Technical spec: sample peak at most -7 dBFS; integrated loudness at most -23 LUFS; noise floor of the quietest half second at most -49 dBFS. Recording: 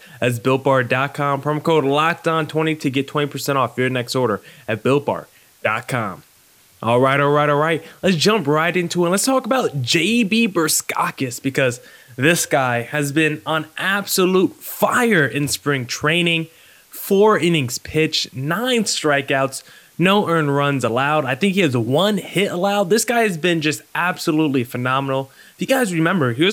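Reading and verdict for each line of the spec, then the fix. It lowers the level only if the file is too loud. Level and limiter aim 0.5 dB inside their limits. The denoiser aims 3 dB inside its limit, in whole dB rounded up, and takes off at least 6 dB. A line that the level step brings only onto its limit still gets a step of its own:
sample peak -1.5 dBFS: fail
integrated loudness -18.5 LUFS: fail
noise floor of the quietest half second -52 dBFS: OK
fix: gain -5 dB; limiter -7.5 dBFS

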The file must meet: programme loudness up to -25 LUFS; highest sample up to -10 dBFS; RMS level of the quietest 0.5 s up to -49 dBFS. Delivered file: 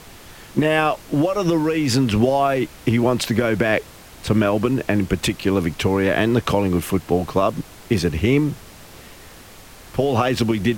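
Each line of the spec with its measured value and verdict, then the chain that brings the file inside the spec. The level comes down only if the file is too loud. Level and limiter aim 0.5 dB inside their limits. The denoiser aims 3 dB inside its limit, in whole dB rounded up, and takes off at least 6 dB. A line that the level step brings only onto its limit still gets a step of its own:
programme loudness -20.0 LUFS: fail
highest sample -5.0 dBFS: fail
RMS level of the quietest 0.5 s -42 dBFS: fail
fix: denoiser 6 dB, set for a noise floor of -42 dBFS; gain -5.5 dB

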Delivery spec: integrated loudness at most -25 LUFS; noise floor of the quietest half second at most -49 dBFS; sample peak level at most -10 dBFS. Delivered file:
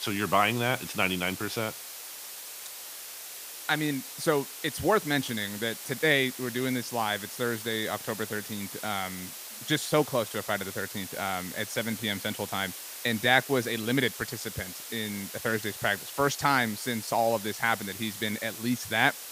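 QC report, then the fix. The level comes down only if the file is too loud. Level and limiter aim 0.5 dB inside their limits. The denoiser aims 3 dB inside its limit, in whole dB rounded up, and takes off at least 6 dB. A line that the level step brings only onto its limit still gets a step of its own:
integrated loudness -29.5 LUFS: OK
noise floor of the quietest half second -42 dBFS: fail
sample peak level -6.5 dBFS: fail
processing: denoiser 10 dB, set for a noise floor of -42 dBFS; limiter -10.5 dBFS

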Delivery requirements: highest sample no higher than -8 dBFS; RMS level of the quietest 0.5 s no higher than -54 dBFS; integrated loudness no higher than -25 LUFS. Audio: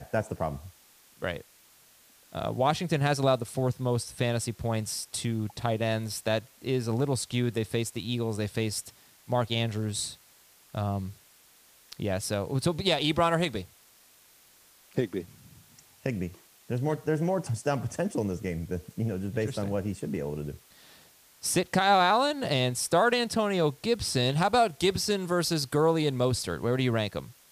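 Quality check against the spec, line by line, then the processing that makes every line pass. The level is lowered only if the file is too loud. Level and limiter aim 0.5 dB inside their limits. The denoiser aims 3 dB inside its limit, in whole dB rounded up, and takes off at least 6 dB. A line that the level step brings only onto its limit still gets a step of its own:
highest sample -11.0 dBFS: OK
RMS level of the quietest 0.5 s -59 dBFS: OK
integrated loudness -28.5 LUFS: OK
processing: none

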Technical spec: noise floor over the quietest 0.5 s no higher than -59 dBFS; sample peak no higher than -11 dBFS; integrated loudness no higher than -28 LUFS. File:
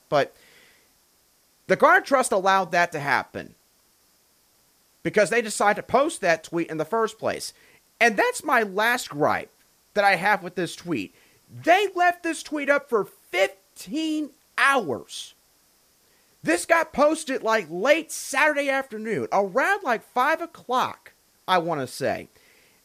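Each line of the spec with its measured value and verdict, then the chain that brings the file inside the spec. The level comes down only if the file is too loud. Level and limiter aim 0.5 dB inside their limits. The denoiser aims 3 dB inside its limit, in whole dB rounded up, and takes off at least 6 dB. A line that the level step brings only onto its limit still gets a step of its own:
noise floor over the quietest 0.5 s -63 dBFS: OK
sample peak -6.0 dBFS: fail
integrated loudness -23.0 LUFS: fail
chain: gain -5.5 dB

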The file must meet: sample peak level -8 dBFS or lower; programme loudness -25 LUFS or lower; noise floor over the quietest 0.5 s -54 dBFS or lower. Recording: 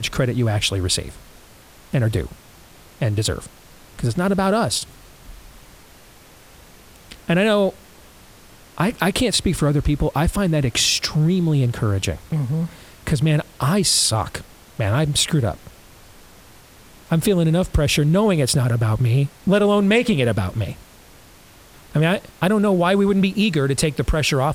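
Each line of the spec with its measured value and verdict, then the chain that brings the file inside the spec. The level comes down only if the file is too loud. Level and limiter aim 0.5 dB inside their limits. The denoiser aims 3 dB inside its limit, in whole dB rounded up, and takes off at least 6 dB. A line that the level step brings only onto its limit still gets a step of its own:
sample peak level -5.0 dBFS: fail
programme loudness -19.5 LUFS: fail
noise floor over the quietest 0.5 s -47 dBFS: fail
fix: denoiser 6 dB, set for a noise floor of -47 dBFS; gain -6 dB

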